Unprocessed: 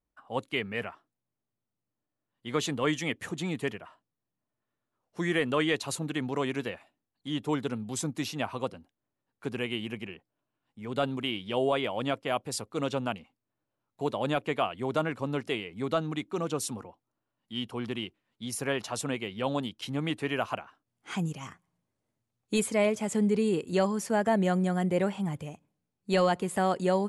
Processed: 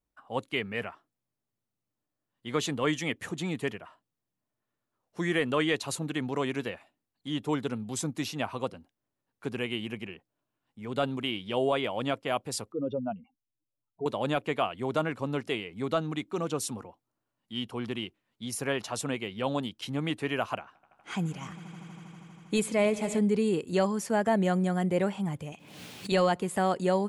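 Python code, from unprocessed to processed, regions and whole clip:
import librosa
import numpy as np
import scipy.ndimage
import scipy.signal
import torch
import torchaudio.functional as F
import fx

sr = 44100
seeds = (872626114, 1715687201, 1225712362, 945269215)

y = fx.chain(x, sr, fx.spec_expand(power=2.5),
    fx.air_absorb(metres=240.0), at=(12.72, 14.06))
y = fx.chain(y, sr, fx.high_shelf(hz=8700.0, db=-4.5),
    fx.echo_swell(ms=80, loudest=5, wet_db=-18), at=(20.59, 23.19))
y = fx.chain(y, sr, fx.highpass(hz=200.0, slope=6),
    fx.peak_eq(hz=3100.0, db=12.5, octaves=1.6),
    fx.pre_swell(db_per_s=49.0), at=(25.52, 26.12))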